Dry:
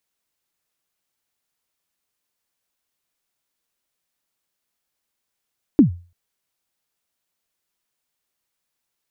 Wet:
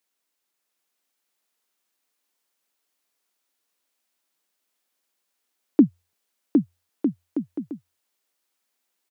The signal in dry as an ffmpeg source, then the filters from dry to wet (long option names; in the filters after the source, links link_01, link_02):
-f lavfi -i "aevalsrc='0.631*pow(10,-3*t/0.35)*sin(2*PI*(330*0.115/log(87/330)*(exp(log(87/330)*min(t,0.115)/0.115)-1)+87*max(t-0.115,0)))':duration=0.34:sample_rate=44100"
-af "highpass=frequency=210:width=0.5412,highpass=frequency=210:width=1.3066,aecho=1:1:760|1254|1575|1784|1919:0.631|0.398|0.251|0.158|0.1"